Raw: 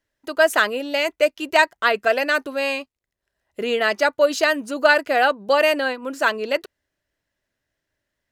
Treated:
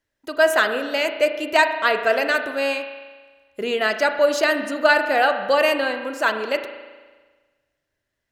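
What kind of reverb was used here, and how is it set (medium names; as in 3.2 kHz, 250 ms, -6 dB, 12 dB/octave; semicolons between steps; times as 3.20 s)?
spring tank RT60 1.4 s, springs 36 ms, chirp 30 ms, DRR 7 dB; trim -1 dB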